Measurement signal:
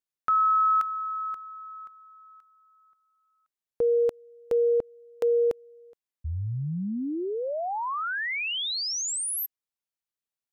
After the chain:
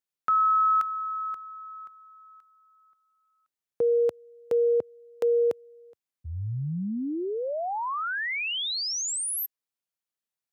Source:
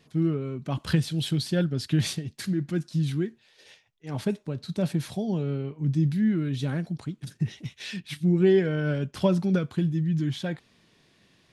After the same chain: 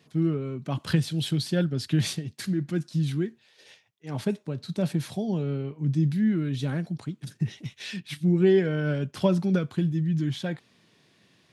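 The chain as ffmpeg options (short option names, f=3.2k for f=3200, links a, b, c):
-af "highpass=f=87:w=0.5412,highpass=f=87:w=1.3066"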